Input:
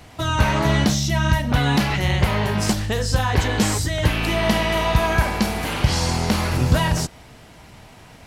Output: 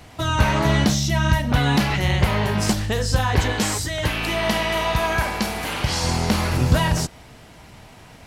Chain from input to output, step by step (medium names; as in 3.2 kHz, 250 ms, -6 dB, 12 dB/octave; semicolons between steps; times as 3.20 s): 3.52–6.04 s: bass shelf 380 Hz -6 dB